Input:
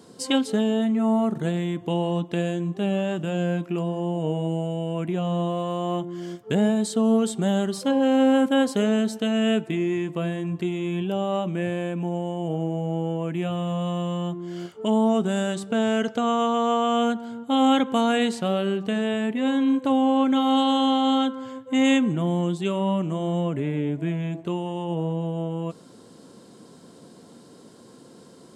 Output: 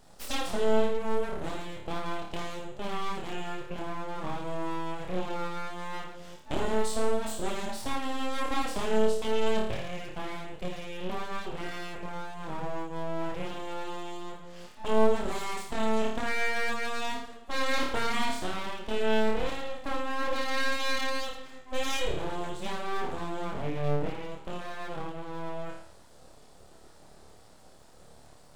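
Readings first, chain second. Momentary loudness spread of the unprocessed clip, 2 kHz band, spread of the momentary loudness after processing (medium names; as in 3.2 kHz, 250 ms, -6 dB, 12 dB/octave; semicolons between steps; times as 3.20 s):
8 LU, -0.5 dB, 11 LU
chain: flutter echo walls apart 4.7 m, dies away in 0.67 s; full-wave rectifier; trim -7.5 dB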